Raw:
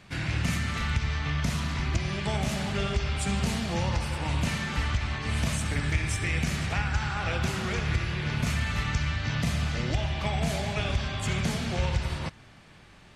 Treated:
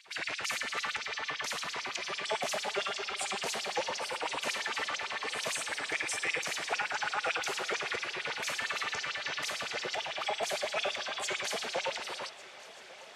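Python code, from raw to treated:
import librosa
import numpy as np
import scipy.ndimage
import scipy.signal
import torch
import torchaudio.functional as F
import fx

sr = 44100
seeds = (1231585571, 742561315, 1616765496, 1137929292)

y = fx.filter_lfo_highpass(x, sr, shape='sine', hz=8.9, low_hz=440.0, high_hz=5900.0, q=2.8)
y = fx.echo_heads(y, sr, ms=383, heads='first and third', feedback_pct=73, wet_db=-21.0)
y = y * 10.0 ** (-2.5 / 20.0)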